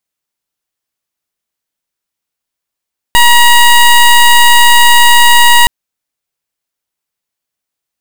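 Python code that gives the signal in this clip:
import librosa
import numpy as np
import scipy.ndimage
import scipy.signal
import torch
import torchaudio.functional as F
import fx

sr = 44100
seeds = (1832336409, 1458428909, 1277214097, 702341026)

y = fx.pulse(sr, length_s=2.52, hz=954.0, level_db=-4.0, duty_pct=17)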